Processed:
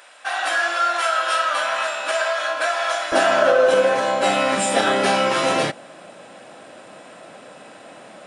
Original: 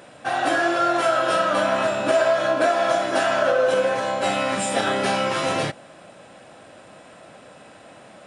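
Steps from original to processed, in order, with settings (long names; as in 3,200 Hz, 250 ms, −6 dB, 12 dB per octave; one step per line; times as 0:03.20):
high-pass filter 1,100 Hz 12 dB per octave, from 0:03.12 180 Hz
level +4 dB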